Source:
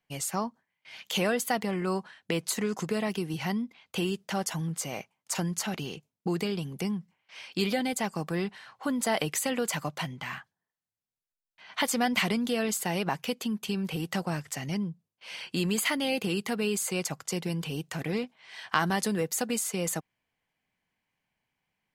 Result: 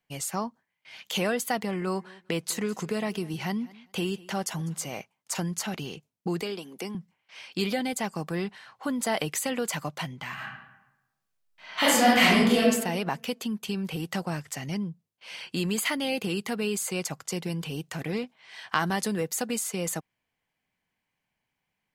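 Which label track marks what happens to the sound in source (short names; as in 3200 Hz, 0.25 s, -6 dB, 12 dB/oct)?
1.640000	4.910000	feedback echo 0.2 s, feedback 18%, level -22 dB
6.420000	6.950000	HPF 250 Hz 24 dB/oct
10.340000	12.600000	reverb throw, RT60 0.95 s, DRR -8 dB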